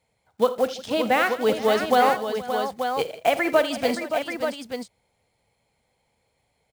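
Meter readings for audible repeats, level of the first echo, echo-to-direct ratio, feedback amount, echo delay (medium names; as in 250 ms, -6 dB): 6, -16.5 dB, -4.0 dB, no regular repeats, 50 ms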